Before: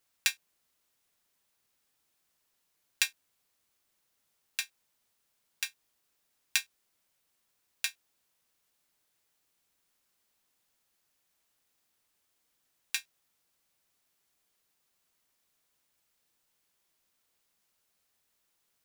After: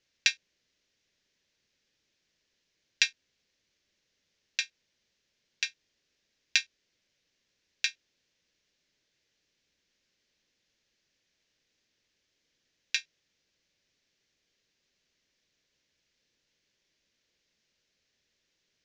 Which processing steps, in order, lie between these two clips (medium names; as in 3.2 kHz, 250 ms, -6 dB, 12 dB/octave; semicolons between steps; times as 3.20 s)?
steep low-pass 6.4 kHz 48 dB/octave; high-order bell 980 Hz -10.5 dB 1.2 oct; trim +4.5 dB